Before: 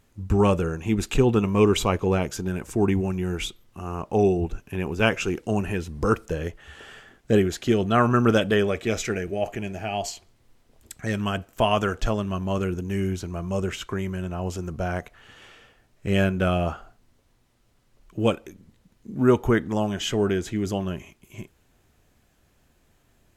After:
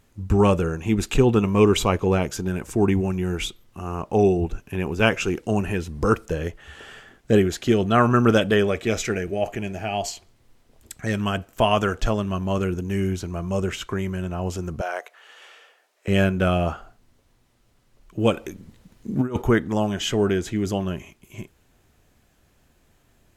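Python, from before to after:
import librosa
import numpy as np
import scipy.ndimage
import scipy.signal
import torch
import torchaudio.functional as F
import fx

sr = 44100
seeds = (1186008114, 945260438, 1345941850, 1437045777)

y = fx.highpass(x, sr, hz=460.0, slope=24, at=(14.81, 16.08))
y = fx.over_compress(y, sr, threshold_db=-23.0, ratio=-0.5, at=(18.35, 19.42))
y = F.gain(torch.from_numpy(y), 2.0).numpy()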